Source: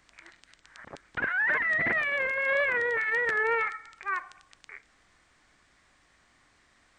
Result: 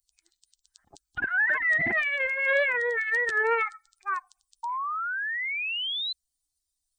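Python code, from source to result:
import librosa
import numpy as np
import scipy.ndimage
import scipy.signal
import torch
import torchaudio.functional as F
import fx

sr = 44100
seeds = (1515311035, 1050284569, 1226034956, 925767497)

y = fx.bin_expand(x, sr, power=2.0)
y = fx.high_shelf(y, sr, hz=6900.0, db=10.5)
y = fx.spec_paint(y, sr, seeds[0], shape='rise', start_s=4.63, length_s=1.5, low_hz=920.0, high_hz=4100.0, level_db=-35.0)
y = y * 10.0 ** (4.5 / 20.0)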